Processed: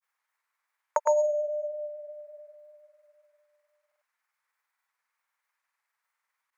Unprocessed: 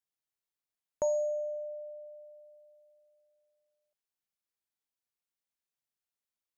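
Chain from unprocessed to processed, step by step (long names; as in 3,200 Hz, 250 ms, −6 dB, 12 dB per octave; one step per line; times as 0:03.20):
granular cloud 100 ms, spray 100 ms, pitch spread up and down by 0 semitones
elliptic high-pass filter 480 Hz
flat-topped bell 1,400 Hz +14 dB
level +7.5 dB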